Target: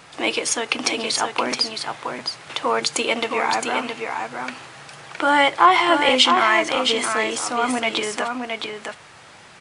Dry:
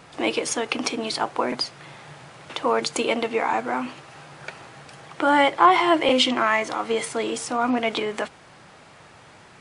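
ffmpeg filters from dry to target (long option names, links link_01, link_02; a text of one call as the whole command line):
ffmpeg -i in.wav -af "tiltshelf=frequency=920:gain=-4,aecho=1:1:666:0.531,volume=1.5dB" out.wav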